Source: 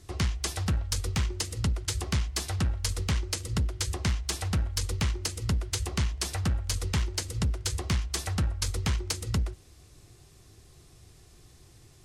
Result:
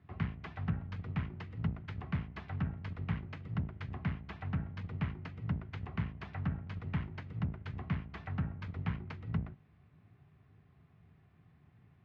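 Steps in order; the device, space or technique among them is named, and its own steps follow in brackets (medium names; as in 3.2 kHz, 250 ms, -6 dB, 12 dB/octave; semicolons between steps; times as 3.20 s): sub-octave bass pedal (octave divider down 1 oct, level -1 dB; cabinet simulation 83–2300 Hz, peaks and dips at 160 Hz +6 dB, 340 Hz -9 dB, 510 Hz -9 dB); trim -7 dB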